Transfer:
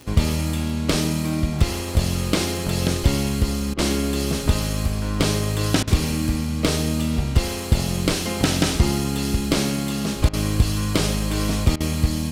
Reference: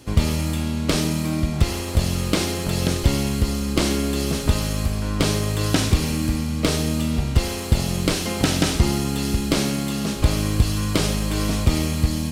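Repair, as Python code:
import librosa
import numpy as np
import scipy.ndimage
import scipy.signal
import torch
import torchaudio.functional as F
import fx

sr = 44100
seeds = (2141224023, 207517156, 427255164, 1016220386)

y = fx.fix_declick_ar(x, sr, threshold=6.5)
y = fx.fix_interpolate(y, sr, at_s=(3.74, 5.83, 10.29, 11.76), length_ms=43.0)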